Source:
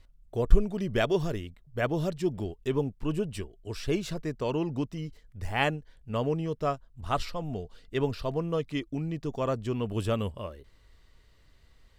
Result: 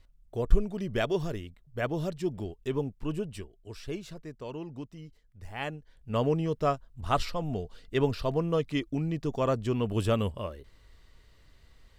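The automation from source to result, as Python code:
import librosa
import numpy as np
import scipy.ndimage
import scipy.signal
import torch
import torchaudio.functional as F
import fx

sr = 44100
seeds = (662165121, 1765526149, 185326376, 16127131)

y = fx.gain(x, sr, db=fx.line((3.08, -2.5), (4.16, -9.5), (5.6, -9.5), (6.18, 2.0)))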